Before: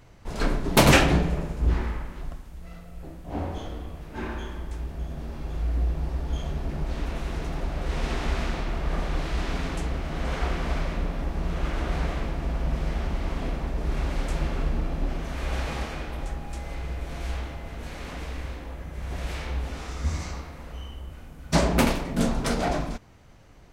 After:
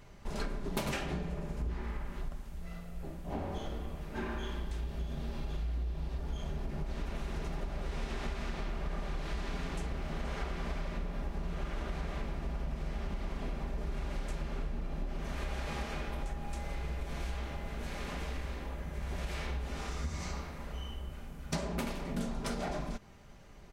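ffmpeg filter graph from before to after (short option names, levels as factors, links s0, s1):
-filter_complex "[0:a]asettb=1/sr,asplit=3[s0][s1][s2];[s0]atrim=end=4.434[s3];[s1]atrim=start=4.43:end=6.18,asetpts=PTS-STARTPTS,afade=t=in:d=0.004:c=qsin,afade=t=out:st=1.746:d=0.004:c=qsin,equalizer=f=3600:w=1.4:g=6.5,asplit=2[s4][s5];[s5]adelay=34,volume=0.299[s6];[s4][s6]amix=inputs=2:normalize=0,atrim=end_sample=77175[s7];[s2]atrim=start=6.176[s8];[s3][s7]acrossfade=d=0.004:c1=hsin:c2=qsin[s9];[s9][s8]acrossfade=d=0.004:c1=qsin:c2=hsin,aecho=1:1:5:0.37,acompressor=threshold=0.0316:ratio=8,volume=0.75"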